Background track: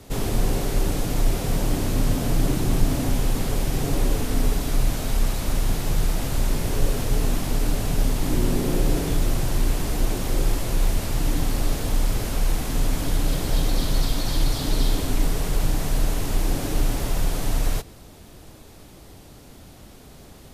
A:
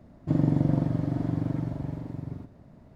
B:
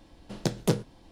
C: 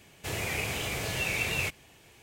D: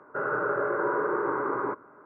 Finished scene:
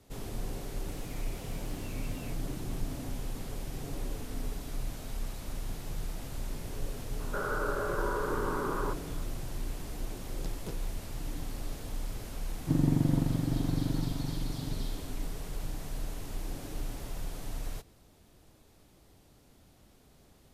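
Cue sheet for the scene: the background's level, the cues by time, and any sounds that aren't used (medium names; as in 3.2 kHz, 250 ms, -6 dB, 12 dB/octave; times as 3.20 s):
background track -15 dB
0.64 s: add C -9 dB + compression 2:1, threshold -52 dBFS
7.19 s: add D -6 dB + three bands compressed up and down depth 40%
9.99 s: add B -18 dB
12.40 s: add A -3 dB + peaking EQ 600 Hz -11 dB 0.3 oct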